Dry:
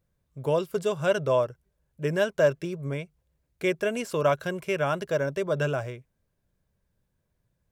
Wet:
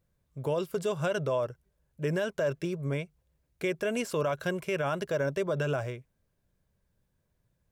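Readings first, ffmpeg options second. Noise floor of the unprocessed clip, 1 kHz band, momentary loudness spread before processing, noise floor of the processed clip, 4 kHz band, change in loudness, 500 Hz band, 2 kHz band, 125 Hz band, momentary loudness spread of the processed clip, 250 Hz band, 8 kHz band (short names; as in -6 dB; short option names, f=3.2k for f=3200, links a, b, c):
-77 dBFS, -5.0 dB, 10 LU, -77 dBFS, -3.5 dB, -4.0 dB, -4.5 dB, -4.0 dB, -2.0 dB, 7 LU, -2.0 dB, -1.5 dB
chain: -af "alimiter=limit=-21dB:level=0:latency=1:release=49"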